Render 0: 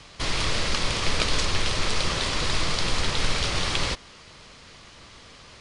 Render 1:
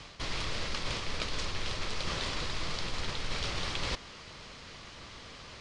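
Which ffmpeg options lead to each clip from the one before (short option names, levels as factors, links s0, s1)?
-af "lowpass=7000,areverse,acompressor=threshold=0.0282:ratio=5,areverse"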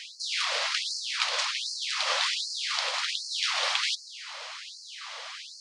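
-af "acontrast=85,afftfilt=real='re*gte(b*sr/1024,470*pow(4200/470,0.5+0.5*sin(2*PI*1.3*pts/sr)))':imag='im*gte(b*sr/1024,470*pow(4200/470,0.5+0.5*sin(2*PI*1.3*pts/sr)))':win_size=1024:overlap=0.75,volume=1.33"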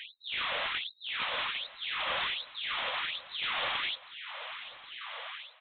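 -af "aresample=8000,asoftclip=type=tanh:threshold=0.0422,aresample=44100,aecho=1:1:1086:0.126"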